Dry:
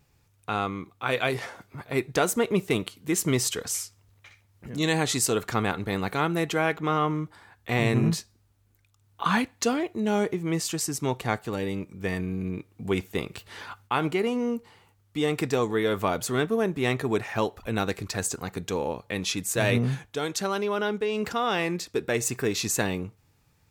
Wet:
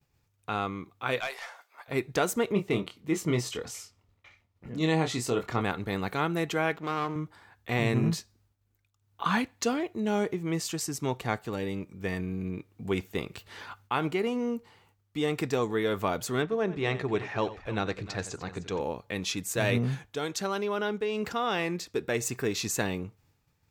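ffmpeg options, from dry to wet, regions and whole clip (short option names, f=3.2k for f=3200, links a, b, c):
-filter_complex "[0:a]asettb=1/sr,asplit=3[a][b][c];[a]atrim=end=1.204[d];[b]atrim=start=1.2:end=1.88,asetpts=PTS-STARTPTS,afade=t=in:d=0.004:c=qsin,afade=t=out:st=0.676:d=0.004:c=qsin,highpass=f=640:w=0.5412,highpass=f=640:w=1.3066,aeval=exprs='(tanh(12.6*val(0)+0.2)-tanh(0.2))/12.6':c=same[e];[c]atrim=start=1.876[f];[d][e]acrossfade=d=0.004:c1=hsin:c2=qsin[g];[g][f]acrossfade=d=0.004:c1=qsin:c2=hsin,asettb=1/sr,asplit=3[h][i][j];[h]atrim=end=2.524[k];[i]atrim=start=2.52:end=5.61,asetpts=PTS-STARTPTS,afade=t=in:d=0.004:c=qsin,afade=t=out:st=3.086:d=0.004:c=qsin,highshelf=f=5.3k:g=-12,bandreject=f=1.6k:w=10,asplit=2[l][m];[m]adelay=25,volume=-6dB[n];[l][n]amix=inputs=2:normalize=0,atrim=end_sample=136269[o];[j]atrim=start=5.606[p];[k][o]acrossfade=d=0.004:c1=hsin:c2=qsin[q];[q][p]acrossfade=d=0.004:c1=qsin:c2=hsin,asettb=1/sr,asplit=3[r][s][t];[r]atrim=end=6.764[u];[s]atrim=start=6.76:end=7.16,asetpts=PTS-STARTPTS,afade=t=in:d=0.004:c=qsin,afade=t=out:st=0.396:d=0.004:c=qsin,aeval=exprs='if(lt(val(0),0),0.251*val(0),val(0))':c=same,highpass=95[v];[t]atrim=start=7.156[w];[u][v]acrossfade=d=0.004:c1=hsin:c2=qsin[x];[x][w]acrossfade=d=0.004:c1=qsin:c2=hsin,asettb=1/sr,asplit=3[y][z][aa];[y]atrim=end=16.424[ab];[z]atrim=start=16.42:end=18.81,asetpts=PTS-STARTPTS,afade=t=in:d=0.004:c=qsin,afade=t=out:st=2.386:d=0.004:c=qsin,lowpass=5.3k,bandreject=f=240:w=5.7,aecho=1:1:90|308:0.168|0.158,atrim=end_sample=105399[ac];[aa]atrim=start=18.806[ad];[ab][ac]acrossfade=d=0.004:c1=hsin:c2=qsin[ae];[ae][ad]acrossfade=d=0.004:c1=qsin:c2=hsin,agate=range=-33dB:threshold=-60dB:ratio=3:detection=peak,equalizer=f=9.9k:t=o:w=0.6:g=-4,volume=-3dB"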